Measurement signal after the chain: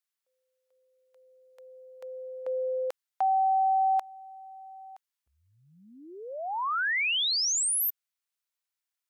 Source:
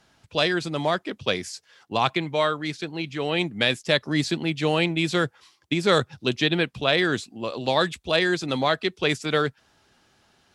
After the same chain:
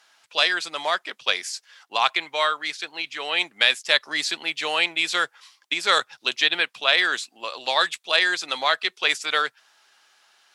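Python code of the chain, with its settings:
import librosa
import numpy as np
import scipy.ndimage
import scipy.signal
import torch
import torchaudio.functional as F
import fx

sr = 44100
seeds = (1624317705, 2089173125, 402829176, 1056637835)

y = scipy.signal.sosfilt(scipy.signal.butter(2, 1000.0, 'highpass', fs=sr, output='sos'), x)
y = F.gain(torch.from_numpy(y), 5.0).numpy()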